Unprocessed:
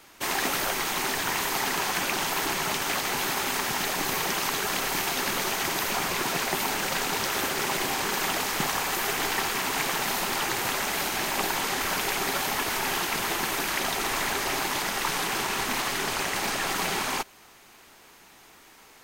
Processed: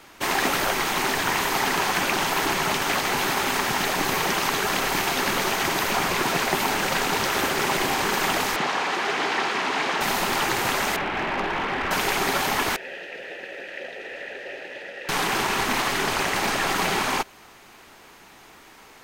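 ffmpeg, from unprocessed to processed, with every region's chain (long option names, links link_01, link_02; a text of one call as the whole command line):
ffmpeg -i in.wav -filter_complex "[0:a]asettb=1/sr,asplit=3[link_01][link_02][link_03];[link_01]atrim=end=8.564[link_04];[link_02]atrim=start=8.56:end=10.01,asetpts=PTS-STARTPTS,afade=type=in:duration=0.004:curve=qsin,afade=type=out:start_time=1.446:duration=0.004:curve=qsin,asoftclip=type=hard:threshold=-22.5dB,highpass=220,lowpass=4700[link_05];[link_03]atrim=start=10.006[link_06];[link_04][link_05]acrossfade=duration=0.004:curve1=hsin:curve2=qsin[link_07];[link_07][link_06]acrossfade=duration=0.004:curve1=qsin:curve2=hsin,asettb=1/sr,asplit=3[link_08][link_09][link_10];[link_08]atrim=end=10.964[link_11];[link_09]atrim=start=10.96:end=11.91,asetpts=PTS-STARTPTS,afade=type=in:duration=0.004:curve=qsin,afade=type=out:start_time=0.946:duration=0.004:curve=qsin,lowpass=frequency=2900:width=0.5412,lowpass=frequency=2900:width=1.3066,volume=27.5dB,asoftclip=hard,volume=-27.5dB[link_12];[link_10]atrim=start=11.906[link_13];[link_11][link_12]acrossfade=duration=0.004:curve1=hsin:curve2=qsin[link_14];[link_14][link_13]acrossfade=duration=0.004:curve1=qsin:curve2=hsin,asettb=1/sr,asplit=3[link_15][link_16][link_17];[link_15]atrim=end=12.764[link_18];[link_16]atrim=start=12.76:end=15.09,asetpts=PTS-STARTPTS,afade=type=in:duration=0.004:curve=qsin,afade=type=out:start_time=2.326:duration=0.004:curve=qsin,asplit=3[link_19][link_20][link_21];[link_19]bandpass=frequency=530:width_type=q:width=8,volume=0dB[link_22];[link_20]bandpass=frequency=1840:width_type=q:width=8,volume=-6dB[link_23];[link_21]bandpass=frequency=2480:width_type=q:width=8,volume=-9dB[link_24];[link_22][link_23][link_24]amix=inputs=3:normalize=0,lowshelf=frequency=80:gain=11,asplit=2[link_25][link_26];[link_26]adelay=16,volume=-11.5dB[link_27];[link_25][link_27]amix=inputs=2:normalize=0,atrim=end_sample=102753[link_28];[link_17]atrim=start=15.086[link_29];[link_18][link_28]acrossfade=duration=0.004:curve1=hsin:curve2=qsin[link_30];[link_30][link_29]acrossfade=duration=0.004:curve1=qsin:curve2=hsin,highshelf=frequency=4700:gain=-7,acontrast=42" out.wav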